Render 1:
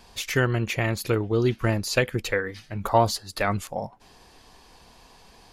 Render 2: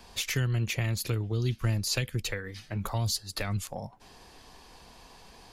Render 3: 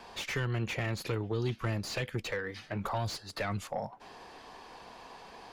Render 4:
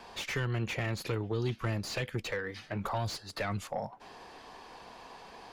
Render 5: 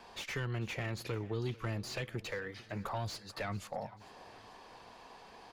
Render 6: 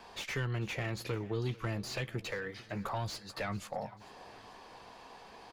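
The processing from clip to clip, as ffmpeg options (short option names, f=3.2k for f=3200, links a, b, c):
-filter_complex "[0:a]acrossover=split=170|3000[a][b][c];[b]acompressor=threshold=-35dB:ratio=10[d];[a][d][c]amix=inputs=3:normalize=0"
-filter_complex "[0:a]asplit=2[a][b];[b]highpass=f=720:p=1,volume=22dB,asoftclip=type=tanh:threshold=-13dB[c];[a][c]amix=inputs=2:normalize=0,lowpass=f=1.1k:p=1,volume=-6dB,volume=-6dB"
-af anull
-af "aecho=1:1:445|890|1335|1780:0.1|0.047|0.0221|0.0104,volume=-4.5dB"
-filter_complex "[0:a]asplit=2[a][b];[b]adelay=15,volume=-12.5dB[c];[a][c]amix=inputs=2:normalize=0,volume=1.5dB"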